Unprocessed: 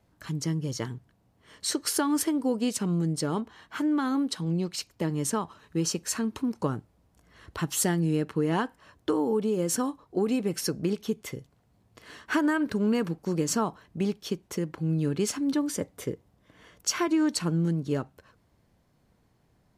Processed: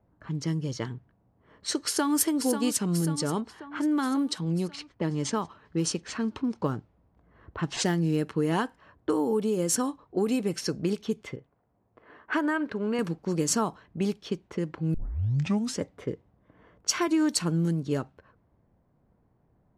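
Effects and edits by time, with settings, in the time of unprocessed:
1.81–2.24 s: echo throw 540 ms, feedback 60%, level -8.5 dB
4.68–8.18 s: decimation joined by straight lines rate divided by 3×
11.36–12.99 s: tone controls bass -9 dB, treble -12 dB
14.94 s: tape start 0.87 s
whole clip: level-controlled noise filter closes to 1.1 kHz, open at -22 dBFS; treble shelf 7.1 kHz +9 dB

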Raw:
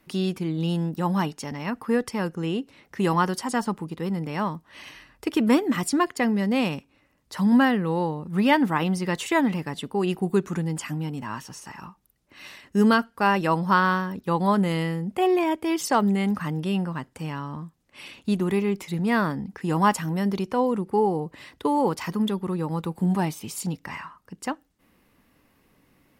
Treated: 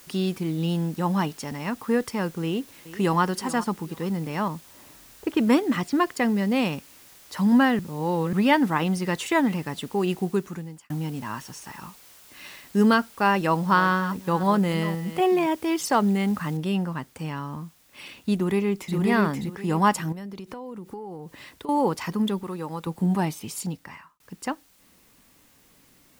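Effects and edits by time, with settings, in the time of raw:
2.43–3.21 s: echo throw 420 ms, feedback 30%, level -16 dB
4.48–6.13 s: level-controlled noise filter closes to 600 Hz, open at -17.5 dBFS
7.79–8.33 s: reverse
10.16–10.90 s: fade out
13.40–15.47 s: chunks repeated in reverse 258 ms, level -13 dB
16.57 s: noise floor step -51 dB -60 dB
18.35–18.96 s: echo throw 530 ms, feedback 25%, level -3.5 dB
20.12–21.69 s: compression 16:1, threshold -33 dBFS
22.43–22.87 s: bass shelf 290 Hz -10.5 dB
23.57–24.20 s: fade out

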